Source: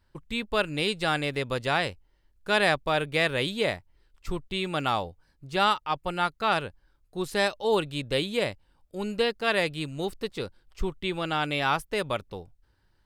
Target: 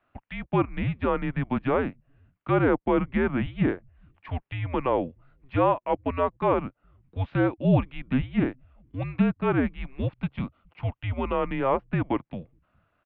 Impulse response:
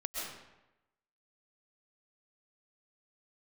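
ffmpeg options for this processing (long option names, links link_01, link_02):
-filter_complex "[0:a]asettb=1/sr,asplit=3[link_01][link_02][link_03];[link_01]atrim=end=10.124[link_04];[link_02]atrim=start=10.12:end=11.35,asetpts=PTS-STARTPTS,afade=type=in:duration=0.004:curve=qsin,afade=type=out:start_time=1.226:duration=0.004:curve=qsin,bandreject=frequency=2000:width=7.4[link_05];[link_03]atrim=start=11.346[link_06];[link_04][link_05]acrossfade=duration=0.004:curve1=hsin:curve2=qsin[link_07];[link_07][link_06]acrossfade=duration=0.004:curve1=qsin:curve2=hsin,acrossover=split=1300[link_08][link_09];[link_09]acompressor=threshold=-42dB:ratio=6[link_10];[link_08][link_10]amix=inputs=2:normalize=0,acrossover=split=160[link_11][link_12];[link_11]adelay=420[link_13];[link_13][link_12]amix=inputs=2:normalize=0,highpass=frequency=310:width_type=q:width=0.5412,highpass=frequency=310:width_type=q:width=1.307,lowpass=frequency=3000:width_type=q:width=0.5176,lowpass=frequency=3000:width_type=q:width=0.7071,lowpass=frequency=3000:width_type=q:width=1.932,afreqshift=-270,volume=5dB"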